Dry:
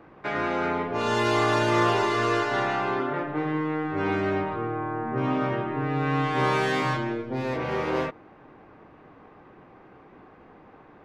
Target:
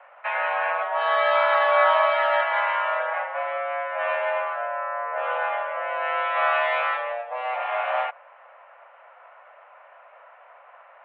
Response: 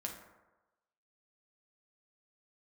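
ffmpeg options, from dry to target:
-filter_complex "[0:a]asettb=1/sr,asplit=3[s0][s1][s2];[s0]atrim=end=0.814[s3];[s1]atrim=start=0.81:end=2.41,asetpts=PTS-STARTPTS,afade=t=in:d=0.004:c=qsin,afade=t=out:st=1.596:d=0.004:c=qsin,aecho=1:1:5.5:0.83,atrim=end_sample=70560[s4];[s2]atrim=start=2.406[s5];[s3][s4]acrossfade=d=0.004:c1=hsin:c2=qsin[s6];[s6][s5]acrossfade=d=0.004:c1=qsin:c2=hsin,highpass=f=360:t=q:w=0.5412,highpass=f=360:t=q:w=1.307,lowpass=f=2800:t=q:w=0.5176,lowpass=f=2800:t=q:w=0.7071,lowpass=f=2800:t=q:w=1.932,afreqshift=240,volume=1.41"

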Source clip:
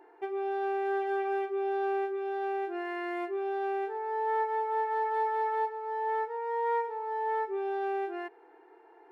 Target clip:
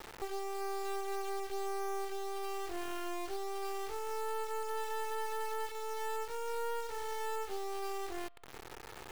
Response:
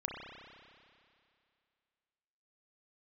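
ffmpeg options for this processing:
-filter_complex "[0:a]acompressor=threshold=0.00282:ratio=2.5,acrusher=bits=6:dc=4:mix=0:aa=0.000001,asplit=2[s0][s1];[1:a]atrim=start_sample=2205[s2];[s1][s2]afir=irnorm=-1:irlink=0,volume=0.0668[s3];[s0][s3]amix=inputs=2:normalize=0,volume=2.99"

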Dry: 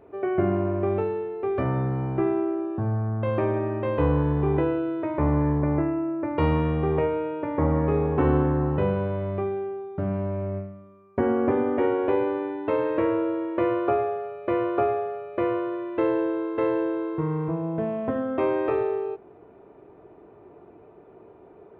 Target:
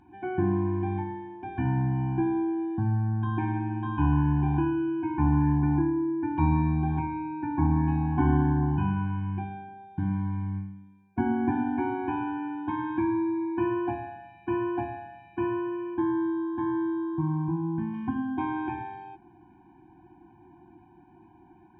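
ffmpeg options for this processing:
-filter_complex "[0:a]acrossover=split=2700[s0][s1];[s1]acompressor=threshold=0.00112:ratio=4:attack=1:release=60[s2];[s0][s2]amix=inputs=2:normalize=0,asettb=1/sr,asplit=3[s3][s4][s5];[s3]atrim=end=15.944[s6];[s4]atrim=start=15.94:end=17.94,asetpts=PTS-STARTPTS,afade=t=in:d=0.004:c=qsin,afade=t=out:st=1.996:d=0.004:c=qsin,highshelf=f=2700:g=-11.5[s7];[s5]atrim=start=17.936[s8];[s6][s7]acrossfade=d=0.004:c1=hsin:c2=qsin[s9];[s9][s8]acrossfade=d=0.004:c1=qsin:c2=hsin,afftfilt=real='re*eq(mod(floor(b*sr/1024/360),2),0)':imag='im*eq(mod(floor(b*sr/1024/360),2),0)':win_size=1024:overlap=0.75"

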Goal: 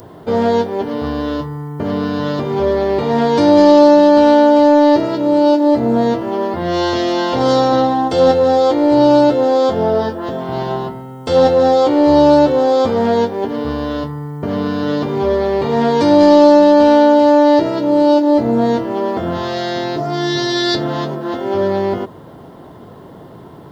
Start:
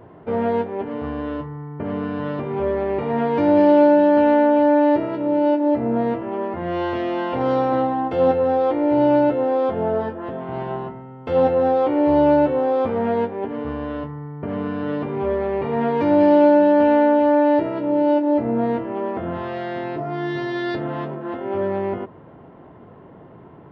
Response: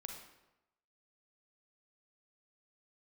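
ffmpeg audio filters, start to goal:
-filter_complex "[0:a]asplit=2[s0][s1];[s1]acontrast=84,volume=0.944[s2];[s0][s2]amix=inputs=2:normalize=0,aexciter=amount=11.6:drive=5.4:freq=3800,volume=0.708"

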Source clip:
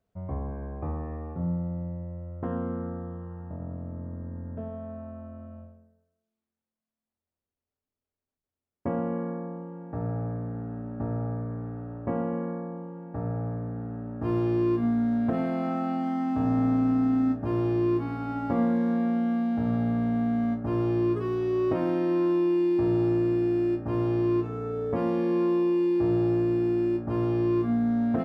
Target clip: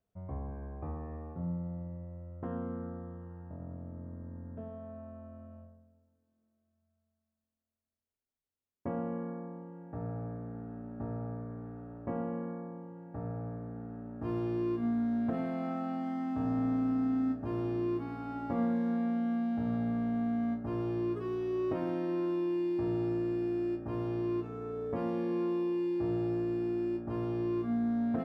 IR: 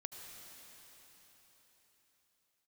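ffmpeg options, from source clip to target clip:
-filter_complex "[0:a]asplit=2[s0][s1];[1:a]atrim=start_sample=2205,adelay=30[s2];[s1][s2]afir=irnorm=-1:irlink=0,volume=0.224[s3];[s0][s3]amix=inputs=2:normalize=0,volume=0.447"

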